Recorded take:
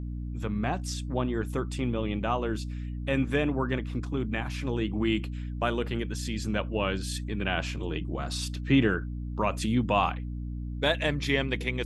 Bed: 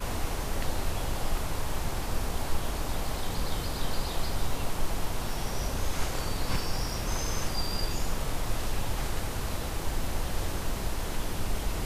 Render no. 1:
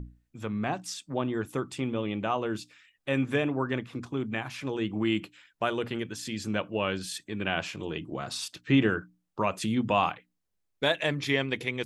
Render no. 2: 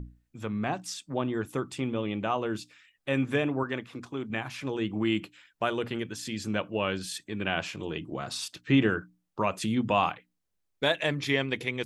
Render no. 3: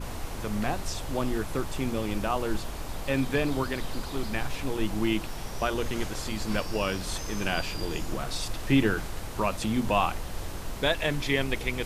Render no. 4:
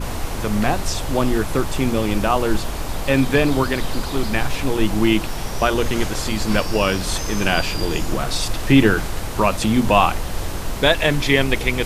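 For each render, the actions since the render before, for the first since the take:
mains-hum notches 60/120/180/240/300 Hz
0:03.63–0:04.30: low-shelf EQ 230 Hz −8.5 dB
mix in bed −4.5 dB
level +10 dB; brickwall limiter −1 dBFS, peak gain reduction 1.5 dB

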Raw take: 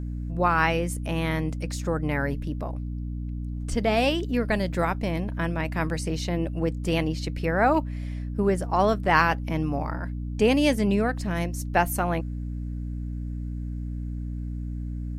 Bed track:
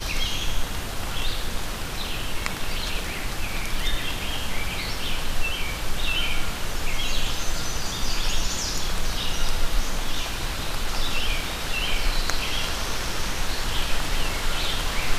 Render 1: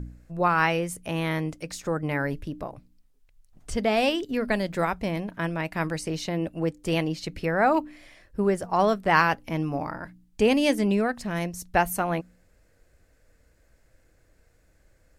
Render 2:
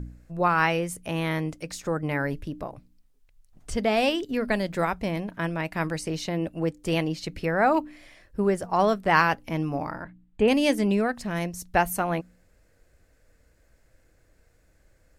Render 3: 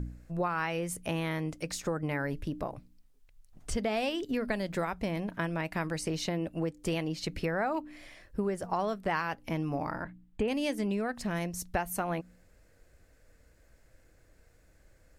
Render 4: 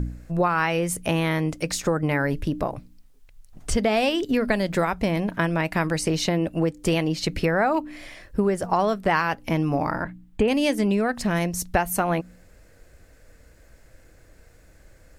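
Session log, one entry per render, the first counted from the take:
hum removal 60 Hz, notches 5
0:10.03–0:10.48: moving average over 8 samples
downward compressor 6 to 1, threshold −28 dBFS, peak gain reduction 13.5 dB
level +9.5 dB

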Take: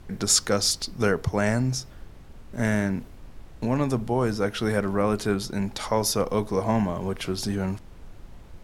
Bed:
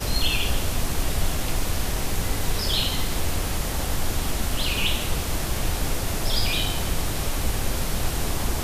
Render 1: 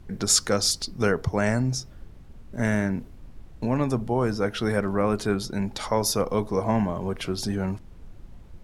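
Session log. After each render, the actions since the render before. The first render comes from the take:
broadband denoise 6 dB, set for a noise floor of −46 dBFS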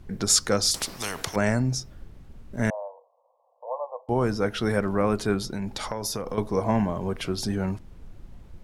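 0:00.74–0:01.36: every bin compressed towards the loudest bin 4 to 1
0:02.70–0:04.09: Chebyshev band-pass filter 490–1,100 Hz, order 5
0:05.43–0:06.38: downward compressor 12 to 1, threshold −25 dBFS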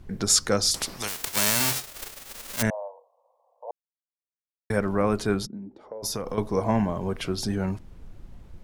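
0:01.07–0:02.61: spectral envelope flattened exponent 0.1
0:03.71–0:04.70: silence
0:05.45–0:06.02: resonant band-pass 190 Hz → 550 Hz, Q 3.7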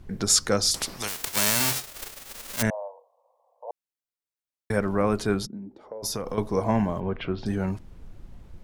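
0:07.00–0:07.46: low-pass filter 3,100 Hz 24 dB per octave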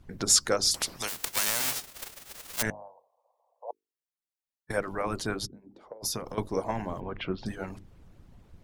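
mains-hum notches 50/100/150/200/250/300/350/400/450 Hz
harmonic and percussive parts rebalanced harmonic −16 dB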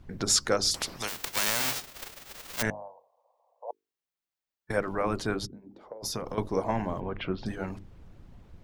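harmonic and percussive parts rebalanced harmonic +5 dB
parametric band 11,000 Hz −6.5 dB 1.3 octaves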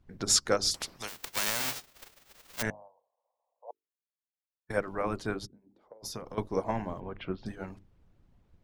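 expander for the loud parts 1.5 to 1, over −48 dBFS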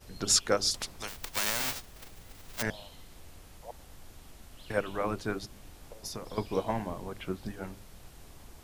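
mix in bed −26 dB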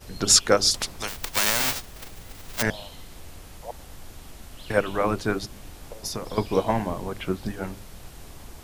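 level +8 dB

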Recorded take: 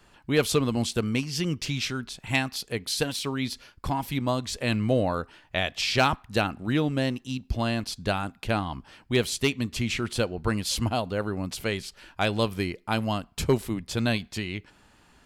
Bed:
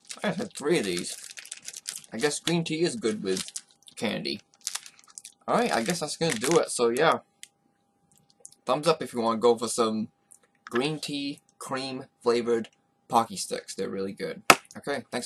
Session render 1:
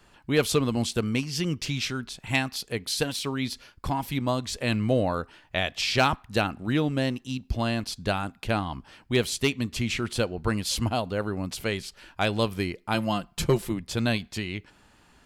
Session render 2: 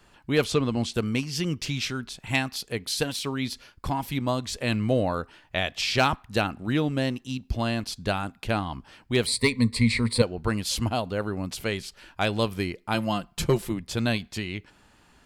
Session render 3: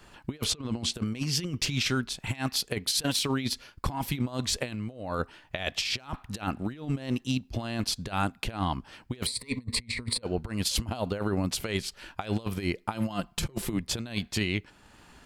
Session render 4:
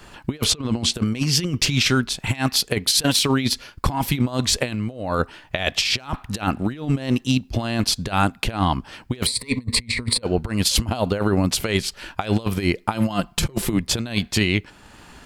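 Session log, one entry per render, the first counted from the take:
0:12.94–0:13.72: comb filter 5.8 ms, depth 58%
0:00.44–0:00.94: high-frequency loss of the air 56 metres; 0:09.26–0:10.22: EQ curve with evenly spaced ripples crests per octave 0.95, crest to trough 17 dB
compressor whose output falls as the input rises −30 dBFS, ratio −0.5; transient designer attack +1 dB, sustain −4 dB
level +9 dB

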